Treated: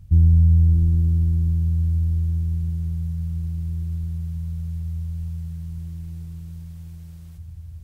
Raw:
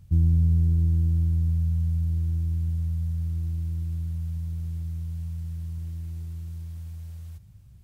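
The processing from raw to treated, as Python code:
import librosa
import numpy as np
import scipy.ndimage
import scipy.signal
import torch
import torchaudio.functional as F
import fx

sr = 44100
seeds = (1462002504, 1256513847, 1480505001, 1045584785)

p1 = fx.low_shelf(x, sr, hz=99.0, db=10.5)
y = p1 + fx.echo_single(p1, sr, ms=623, db=-7.0, dry=0)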